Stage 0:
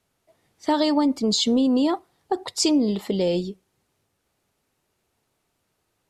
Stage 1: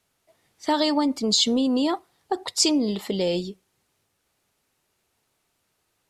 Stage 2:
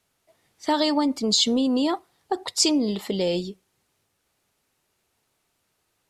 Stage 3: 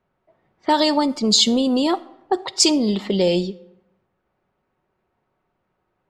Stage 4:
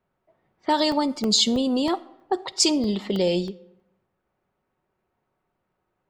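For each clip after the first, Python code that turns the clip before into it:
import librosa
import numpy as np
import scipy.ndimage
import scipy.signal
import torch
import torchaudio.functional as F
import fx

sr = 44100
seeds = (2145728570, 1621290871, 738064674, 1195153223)

y1 = fx.tilt_shelf(x, sr, db=-3.0, hz=970.0)
y2 = y1
y3 = fx.env_lowpass(y2, sr, base_hz=1300.0, full_db=-18.5)
y3 = y3 + 0.3 * np.pad(y3, (int(5.4 * sr / 1000.0), 0))[:len(y3)]
y3 = fx.rev_freeverb(y3, sr, rt60_s=0.89, hf_ratio=0.6, predelay_ms=10, drr_db=19.0)
y3 = F.gain(torch.from_numpy(y3), 4.5).numpy()
y4 = fx.buffer_crackle(y3, sr, first_s=0.6, period_s=0.32, block=64, kind='zero')
y4 = F.gain(torch.from_numpy(y4), -4.0).numpy()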